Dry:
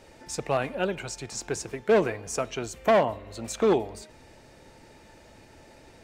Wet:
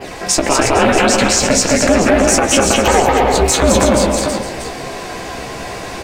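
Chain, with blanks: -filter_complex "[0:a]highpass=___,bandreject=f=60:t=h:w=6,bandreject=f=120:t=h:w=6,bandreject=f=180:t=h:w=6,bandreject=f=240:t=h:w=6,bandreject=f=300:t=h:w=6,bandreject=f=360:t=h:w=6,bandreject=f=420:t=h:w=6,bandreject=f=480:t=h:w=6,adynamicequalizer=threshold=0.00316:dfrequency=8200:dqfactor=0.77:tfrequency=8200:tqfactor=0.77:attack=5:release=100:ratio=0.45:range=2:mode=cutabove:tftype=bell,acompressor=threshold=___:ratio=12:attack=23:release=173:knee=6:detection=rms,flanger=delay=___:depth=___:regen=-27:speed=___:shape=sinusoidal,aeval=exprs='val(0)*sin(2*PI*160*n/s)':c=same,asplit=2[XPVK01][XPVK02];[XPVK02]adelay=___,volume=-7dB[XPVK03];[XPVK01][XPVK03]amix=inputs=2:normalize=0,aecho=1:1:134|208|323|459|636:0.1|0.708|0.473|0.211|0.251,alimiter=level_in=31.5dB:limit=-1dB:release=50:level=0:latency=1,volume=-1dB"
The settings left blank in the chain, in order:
140, -31dB, 0.4, 7.7, 0.66, 15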